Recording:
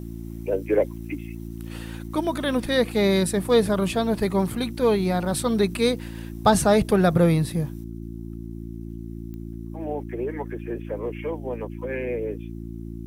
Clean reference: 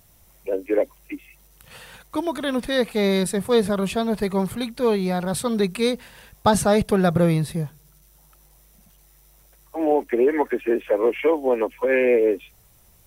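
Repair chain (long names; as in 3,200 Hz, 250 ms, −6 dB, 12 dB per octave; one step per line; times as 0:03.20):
click removal
hum removal 56.5 Hz, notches 6
level 0 dB, from 0:07.84 +11 dB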